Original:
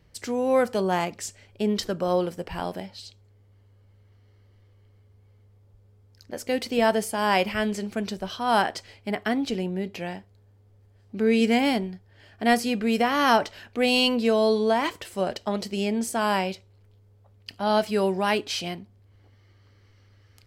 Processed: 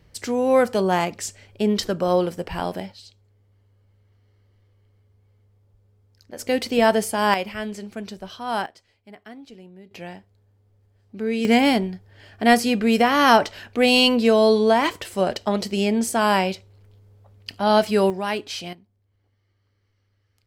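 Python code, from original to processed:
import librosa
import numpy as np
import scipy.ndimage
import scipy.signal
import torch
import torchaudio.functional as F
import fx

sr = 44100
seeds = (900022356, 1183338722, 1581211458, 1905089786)

y = fx.gain(x, sr, db=fx.steps((0.0, 4.0), (2.92, -3.0), (6.39, 4.0), (7.34, -4.0), (8.66, -16.0), (9.91, -3.5), (11.45, 5.0), (18.1, -2.0), (18.73, -12.0)))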